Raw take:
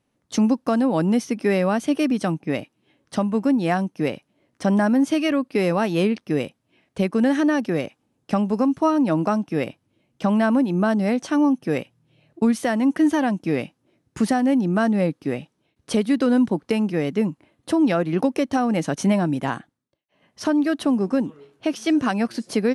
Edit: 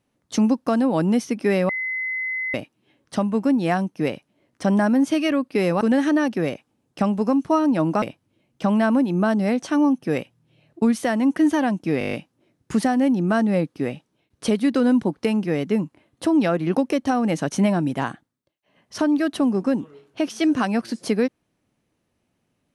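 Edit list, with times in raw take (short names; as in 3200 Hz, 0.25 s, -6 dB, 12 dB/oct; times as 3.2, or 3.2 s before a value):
1.69–2.54 bleep 2040 Hz -23.5 dBFS
5.81–7.13 cut
9.34–9.62 cut
13.59 stutter 0.02 s, 8 plays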